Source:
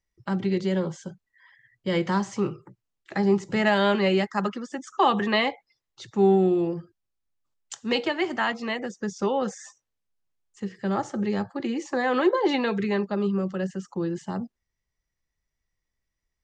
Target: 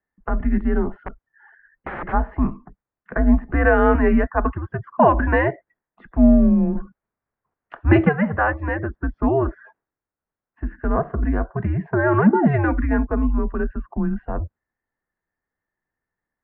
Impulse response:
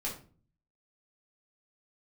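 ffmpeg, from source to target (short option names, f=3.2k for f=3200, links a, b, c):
-filter_complex "[0:a]asplit=3[a][b][c];[a]afade=t=out:st=1.02:d=0.02[d];[b]aeval=exprs='(mod(22.4*val(0)+1,2)-1)/22.4':c=same,afade=t=in:st=1.02:d=0.02,afade=t=out:st=2.12:d=0.02[e];[c]afade=t=in:st=2.12:d=0.02[f];[d][e][f]amix=inputs=3:normalize=0,asettb=1/sr,asplit=3[g][h][i];[g]atrim=end=6.754[j];[h]atrim=start=6.75:end=8.09,asetpts=PTS-STARTPTS,afade=t=in:d=0.004:c=qsin,afade=t=out:st=1.336:d=0.004:c=qsin,acontrast=56[k];[i]atrim=start=8.086[l];[j][k]acrossfade=d=0.004:c1=hsin:c2=qsin[m];[m][l]acrossfade=d=0.004:c1=qsin:c2=hsin,highpass=f=160:t=q:w=0.5412,highpass=f=160:t=q:w=1.307,lowpass=f=2k:t=q:w=0.5176,lowpass=f=2k:t=q:w=0.7071,lowpass=f=2k:t=q:w=1.932,afreqshift=-150,volume=6.5dB"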